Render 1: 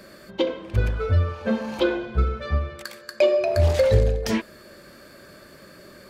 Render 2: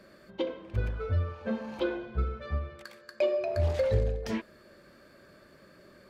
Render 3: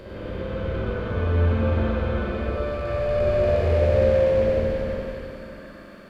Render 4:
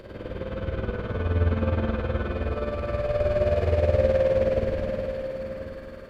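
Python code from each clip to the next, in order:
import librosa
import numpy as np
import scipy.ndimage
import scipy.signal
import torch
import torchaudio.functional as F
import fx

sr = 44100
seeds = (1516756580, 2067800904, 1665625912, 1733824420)

y1 = fx.high_shelf(x, sr, hz=4800.0, db=-9.0)
y1 = F.gain(torch.from_numpy(y1), -8.5).numpy()
y2 = fx.spec_blur(y1, sr, span_ms=1160.0)
y2 = y2 + 10.0 ** (-6.0 / 20.0) * np.pad(y2, (int(94 * sr / 1000.0), 0))[:len(y2)]
y2 = fx.rev_spring(y2, sr, rt60_s=2.0, pass_ms=(49, 59), chirp_ms=70, drr_db=-6.0)
y2 = F.gain(torch.from_numpy(y2), 6.5).numpy()
y3 = y2 * (1.0 - 0.63 / 2.0 + 0.63 / 2.0 * np.cos(2.0 * np.pi * 19.0 * (np.arange(len(y2)) / sr)))
y3 = y3 + 10.0 ** (-12.5 / 20.0) * np.pad(y3, (int(1034 * sr / 1000.0), 0))[:len(y3)]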